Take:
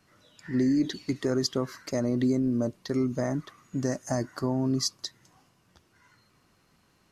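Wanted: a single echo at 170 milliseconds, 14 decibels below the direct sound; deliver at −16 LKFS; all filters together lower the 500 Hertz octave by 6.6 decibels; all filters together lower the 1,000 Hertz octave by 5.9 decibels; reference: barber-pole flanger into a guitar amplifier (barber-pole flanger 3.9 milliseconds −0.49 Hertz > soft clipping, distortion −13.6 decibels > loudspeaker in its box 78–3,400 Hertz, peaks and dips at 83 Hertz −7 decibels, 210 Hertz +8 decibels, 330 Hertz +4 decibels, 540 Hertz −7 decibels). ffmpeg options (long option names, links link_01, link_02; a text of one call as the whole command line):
ffmpeg -i in.wav -filter_complex "[0:a]equalizer=frequency=500:width_type=o:gain=-8.5,equalizer=frequency=1000:width_type=o:gain=-4,aecho=1:1:170:0.2,asplit=2[link_01][link_02];[link_02]adelay=3.9,afreqshift=-0.49[link_03];[link_01][link_03]amix=inputs=2:normalize=1,asoftclip=threshold=-27dB,highpass=78,equalizer=frequency=83:width_type=q:width=4:gain=-7,equalizer=frequency=210:width_type=q:width=4:gain=8,equalizer=frequency=330:width_type=q:width=4:gain=4,equalizer=frequency=540:width_type=q:width=4:gain=-7,lowpass=frequency=3400:width=0.5412,lowpass=frequency=3400:width=1.3066,volume=18dB" out.wav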